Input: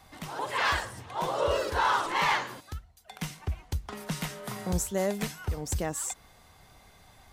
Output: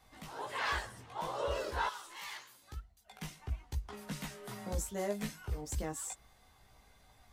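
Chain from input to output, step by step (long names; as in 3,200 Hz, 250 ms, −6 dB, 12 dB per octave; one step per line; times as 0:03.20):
0:01.87–0:02.62: first-order pre-emphasis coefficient 0.9
multi-voice chorus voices 6, 0.44 Hz, delay 17 ms, depth 2.6 ms
level −5 dB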